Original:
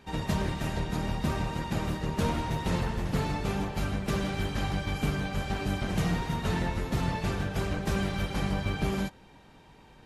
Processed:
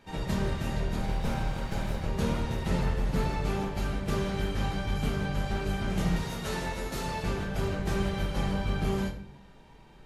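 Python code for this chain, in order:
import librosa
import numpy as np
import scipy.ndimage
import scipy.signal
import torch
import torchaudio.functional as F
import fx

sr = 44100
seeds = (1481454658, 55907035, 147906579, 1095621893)

y = fx.lower_of_two(x, sr, delay_ms=1.3, at=(0.99, 2.08))
y = fx.bass_treble(y, sr, bass_db=-9, treble_db=7, at=(6.16, 7.23))
y = fx.room_shoebox(y, sr, seeds[0], volume_m3=68.0, walls='mixed', distance_m=0.69)
y = y * 10.0 ** (-4.0 / 20.0)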